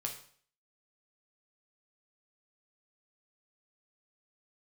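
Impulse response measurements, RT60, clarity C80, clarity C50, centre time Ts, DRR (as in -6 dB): 0.50 s, 12.5 dB, 8.5 dB, 19 ms, 1.5 dB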